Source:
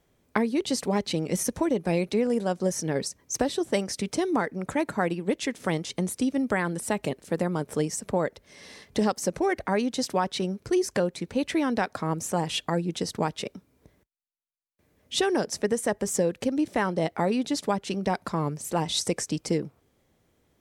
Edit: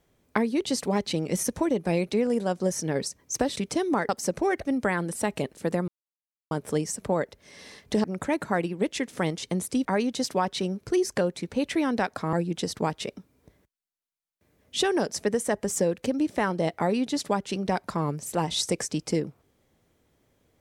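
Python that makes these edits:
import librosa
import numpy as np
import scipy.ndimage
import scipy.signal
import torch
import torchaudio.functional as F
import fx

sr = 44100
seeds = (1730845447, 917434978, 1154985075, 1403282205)

y = fx.edit(x, sr, fx.cut(start_s=3.56, length_s=0.42),
    fx.swap(start_s=4.51, length_s=1.81, other_s=9.08, other_length_s=0.56),
    fx.insert_silence(at_s=7.55, length_s=0.63),
    fx.cut(start_s=12.12, length_s=0.59), tone=tone)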